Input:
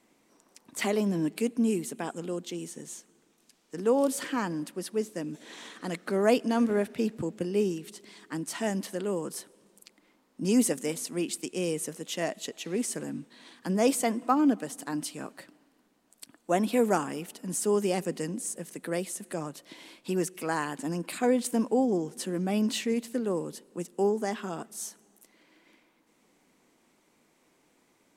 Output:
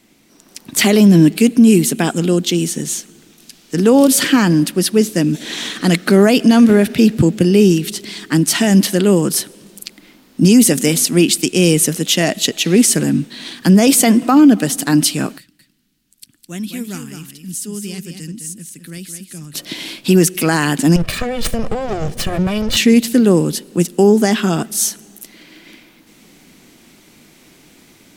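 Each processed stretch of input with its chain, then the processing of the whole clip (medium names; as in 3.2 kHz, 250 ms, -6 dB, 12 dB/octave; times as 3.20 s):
15.38–19.54 s: amplifier tone stack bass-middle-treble 6-0-2 + delay 209 ms -7.5 dB
20.96–22.77 s: comb filter that takes the minimum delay 1.7 ms + treble shelf 5.3 kHz -12 dB + compression 16:1, threshold -33 dBFS
whole clip: graphic EQ 250/500/1000/2000/8000 Hz -3/-9/-11/-4/-6 dB; level rider gain up to 8 dB; loudness maximiser +19 dB; trim -1 dB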